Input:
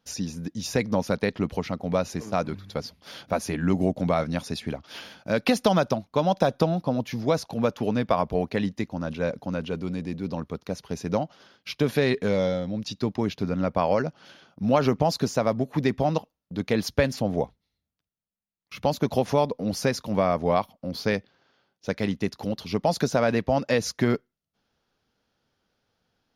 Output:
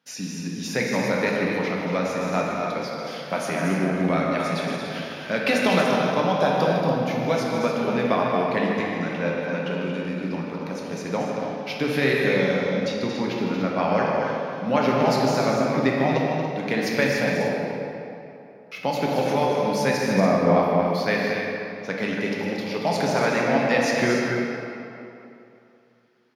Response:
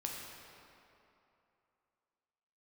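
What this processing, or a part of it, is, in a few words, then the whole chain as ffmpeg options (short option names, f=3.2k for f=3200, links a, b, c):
stadium PA: -filter_complex "[0:a]asettb=1/sr,asplit=3[a][b][c];[a]atrim=end=19.974[d];[b]atrim=start=19.97:end=20.59,asetpts=PTS-STARTPTS,afade=t=in:d=0.004:c=qsin,afade=t=out:st=0.616:d=0.004:c=qsin,tiltshelf=f=860:g=7.5[e];[c]atrim=start=20.586[f];[d][e]acrossfade=d=0.004:c1=hsin:c2=qsin[g];[g][f]acrossfade=d=0.004:c1=qsin:c2=hsin,highpass=f=140:w=0.5412,highpass=f=140:w=1.3066,equalizer=f=2k:t=o:w=1.1:g=8,aecho=1:1:154.5|230.3|285.7:0.282|0.447|0.355[h];[1:a]atrim=start_sample=2205[i];[h][i]afir=irnorm=-1:irlink=0"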